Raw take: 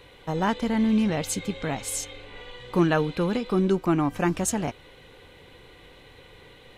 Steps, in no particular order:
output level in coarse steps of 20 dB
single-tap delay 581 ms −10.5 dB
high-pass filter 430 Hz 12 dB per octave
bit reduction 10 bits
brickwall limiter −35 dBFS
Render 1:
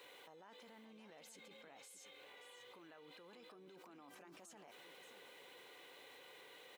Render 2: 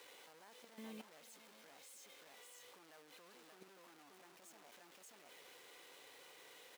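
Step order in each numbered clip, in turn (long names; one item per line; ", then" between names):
bit reduction, then brickwall limiter, then high-pass filter, then output level in coarse steps, then single-tap delay
single-tap delay, then brickwall limiter, then output level in coarse steps, then bit reduction, then high-pass filter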